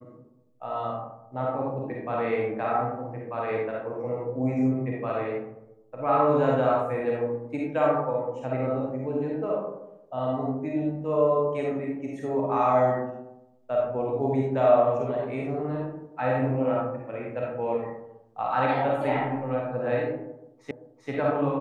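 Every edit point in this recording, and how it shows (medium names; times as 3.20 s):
20.71 s: repeat of the last 0.39 s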